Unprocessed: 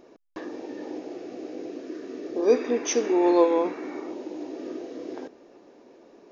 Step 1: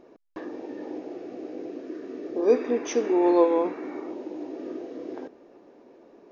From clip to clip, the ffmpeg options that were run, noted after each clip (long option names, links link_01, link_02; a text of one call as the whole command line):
ffmpeg -i in.wav -af "highshelf=frequency=3600:gain=-11" out.wav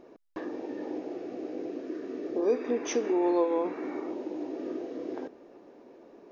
ffmpeg -i in.wav -af "acompressor=threshold=-27dB:ratio=2" out.wav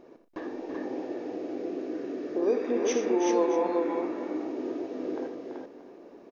ffmpeg -i in.wav -af "aecho=1:1:58|82|120|335|382|631:0.237|0.316|0.112|0.376|0.668|0.168" out.wav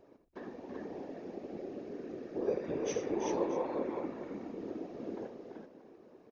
ffmpeg -i in.wav -af "afftfilt=real='hypot(re,im)*cos(2*PI*random(0))':imag='hypot(re,im)*sin(2*PI*random(1))':win_size=512:overlap=0.75,volume=-2.5dB" out.wav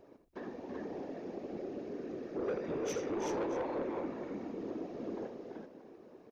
ffmpeg -i in.wav -af "asoftclip=type=tanh:threshold=-32.5dB,volume=2dB" out.wav